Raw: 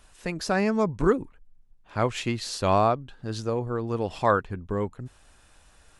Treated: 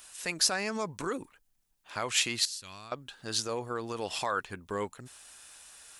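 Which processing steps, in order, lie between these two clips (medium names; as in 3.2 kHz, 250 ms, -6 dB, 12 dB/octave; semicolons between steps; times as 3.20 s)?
2.45–2.92 s: amplifier tone stack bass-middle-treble 6-0-2; peak limiter -20 dBFS, peak gain reduction 11.5 dB; tilt EQ +4 dB/octave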